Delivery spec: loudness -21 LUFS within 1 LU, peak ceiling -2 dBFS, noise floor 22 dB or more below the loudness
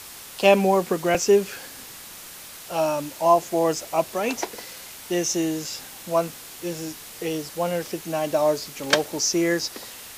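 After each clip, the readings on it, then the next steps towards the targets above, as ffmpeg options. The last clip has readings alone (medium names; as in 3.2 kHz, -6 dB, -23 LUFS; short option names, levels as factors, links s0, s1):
noise floor -41 dBFS; noise floor target -46 dBFS; loudness -23.5 LUFS; peak level -3.0 dBFS; loudness target -21.0 LUFS
-> -af "afftdn=nr=6:nf=-41"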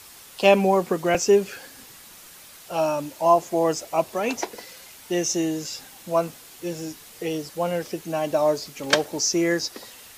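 noise floor -46 dBFS; loudness -23.5 LUFS; peak level -3.0 dBFS; loudness target -21.0 LUFS
-> -af "volume=1.33,alimiter=limit=0.794:level=0:latency=1"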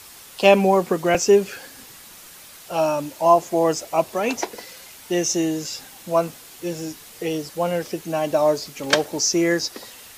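loudness -21.5 LUFS; peak level -2.0 dBFS; noise floor -44 dBFS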